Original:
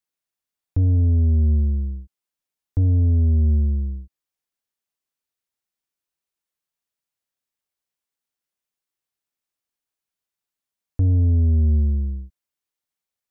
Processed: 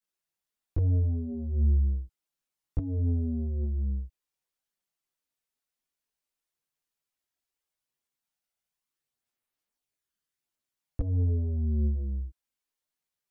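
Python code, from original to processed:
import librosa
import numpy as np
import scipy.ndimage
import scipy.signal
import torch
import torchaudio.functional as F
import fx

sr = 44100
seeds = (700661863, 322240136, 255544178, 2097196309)

y = fx.dynamic_eq(x, sr, hz=150.0, q=0.94, threshold_db=-29.0, ratio=4.0, max_db=-4)
y = fx.over_compress(y, sr, threshold_db=-19.0, ratio=-0.5)
y = fx.chorus_voices(y, sr, voices=4, hz=0.39, base_ms=17, depth_ms=4.3, mix_pct=60)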